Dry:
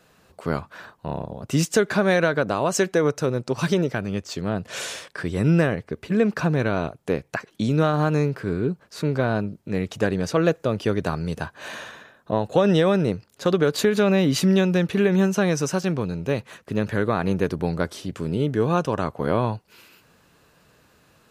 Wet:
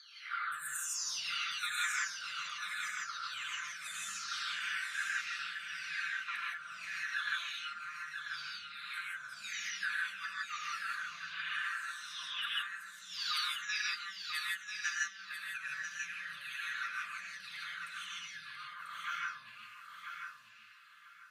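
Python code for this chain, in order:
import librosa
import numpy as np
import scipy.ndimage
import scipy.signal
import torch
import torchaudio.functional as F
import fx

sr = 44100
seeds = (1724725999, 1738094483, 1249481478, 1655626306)

p1 = fx.spec_delay(x, sr, highs='early', ms=980)
p2 = fx.over_compress(p1, sr, threshold_db=-31.0, ratio=-1.0)
p3 = scipy.signal.sosfilt(scipy.signal.ellip(4, 1.0, 40, 1300.0, 'highpass', fs=sr, output='sos'), p2)
p4 = fx.high_shelf(p3, sr, hz=5300.0, db=-10.5)
p5 = p4 + fx.echo_feedback(p4, sr, ms=991, feedback_pct=22, wet_db=-6.5, dry=0)
p6 = fx.rev_gated(p5, sr, seeds[0], gate_ms=190, shape='rising', drr_db=-3.0)
y = p6 * 10.0 ** (-5.0 / 20.0)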